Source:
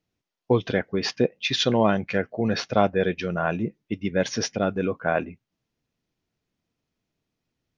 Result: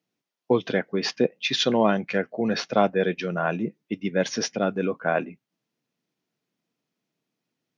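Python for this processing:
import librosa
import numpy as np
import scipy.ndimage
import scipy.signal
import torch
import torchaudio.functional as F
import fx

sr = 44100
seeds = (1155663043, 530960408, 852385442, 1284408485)

y = scipy.signal.sosfilt(scipy.signal.butter(4, 150.0, 'highpass', fs=sr, output='sos'), x)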